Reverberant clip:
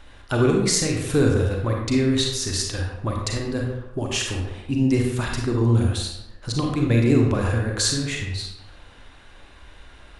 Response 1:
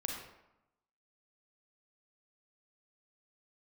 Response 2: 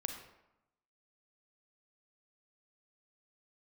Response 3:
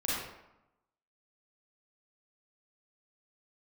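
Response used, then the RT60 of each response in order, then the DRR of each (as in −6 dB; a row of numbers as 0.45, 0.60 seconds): 1; 0.90, 0.90, 0.90 seconds; 0.0, 4.5, −8.0 decibels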